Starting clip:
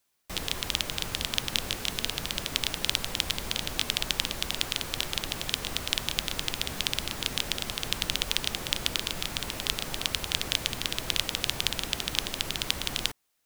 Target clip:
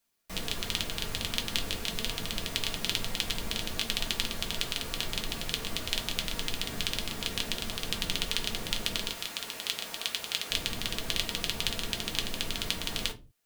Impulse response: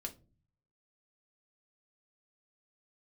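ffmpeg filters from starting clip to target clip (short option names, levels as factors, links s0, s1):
-filter_complex "[0:a]asettb=1/sr,asplit=3[s0][s1][s2];[s0]atrim=end=9.094[s3];[s1]atrim=start=9.09:end=10.51,asetpts=PTS-STARTPTS,afade=t=in:d=0.004:c=qsin,afade=t=out:st=1.416:d=0.004:c=qsin,highpass=f=720:p=1[s4];[s2]atrim=start=10.506[s5];[s3][s4]acrossfade=d=0.004:c1=hsin:c2=qsin[s6];[s6][s5]acrossfade=d=0.004:c1=qsin:c2=hsin[s7];[1:a]atrim=start_sample=2205,afade=t=out:st=0.25:d=0.01,atrim=end_sample=11466[s8];[s7][s8]afir=irnorm=-1:irlink=0"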